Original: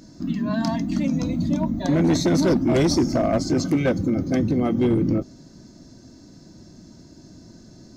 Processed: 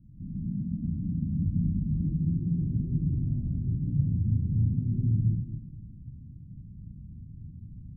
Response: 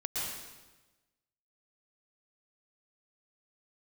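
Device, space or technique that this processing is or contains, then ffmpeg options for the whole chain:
club heard from the street: -filter_complex "[0:a]alimiter=limit=-21dB:level=0:latency=1:release=61,lowpass=frequency=150:width=0.5412,lowpass=frequency=150:width=1.3066[link_01];[1:a]atrim=start_sample=2205[link_02];[link_01][link_02]afir=irnorm=-1:irlink=0,volume=3dB"

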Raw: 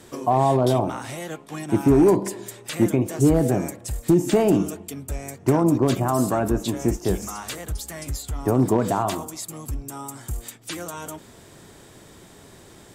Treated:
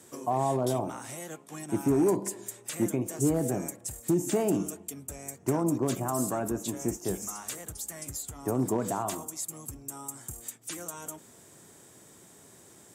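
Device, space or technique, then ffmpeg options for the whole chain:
budget condenser microphone: -af "highpass=110,highshelf=frequency=5500:width_type=q:width=1.5:gain=6.5,volume=-8.5dB"

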